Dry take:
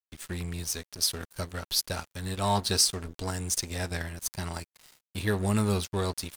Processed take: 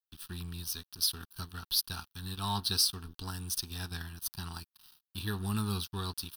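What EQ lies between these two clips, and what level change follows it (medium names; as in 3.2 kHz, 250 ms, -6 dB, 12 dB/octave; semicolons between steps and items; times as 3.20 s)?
treble shelf 3.5 kHz +9.5 dB; static phaser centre 2.1 kHz, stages 6; -5.5 dB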